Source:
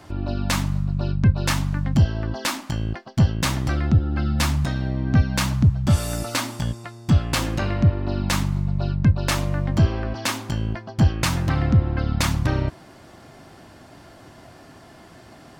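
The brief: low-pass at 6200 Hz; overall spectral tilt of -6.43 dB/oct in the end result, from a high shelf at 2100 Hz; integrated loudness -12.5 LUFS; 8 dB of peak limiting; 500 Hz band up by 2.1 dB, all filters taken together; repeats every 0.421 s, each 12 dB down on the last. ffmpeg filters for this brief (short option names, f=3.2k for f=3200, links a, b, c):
-af "lowpass=6.2k,equalizer=f=500:t=o:g=3,highshelf=f=2.1k:g=-3,alimiter=limit=-16.5dB:level=0:latency=1,aecho=1:1:421|842|1263:0.251|0.0628|0.0157,volume=14dB"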